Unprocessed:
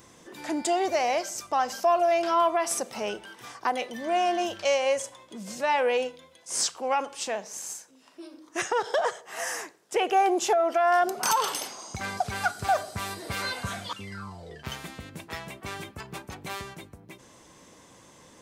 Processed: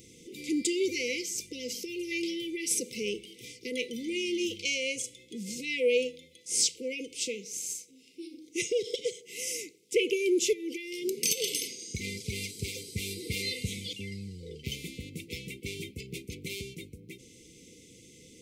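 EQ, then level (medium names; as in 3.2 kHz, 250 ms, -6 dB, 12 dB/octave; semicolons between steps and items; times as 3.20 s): brick-wall FIR band-stop 520–2000 Hz; +1.0 dB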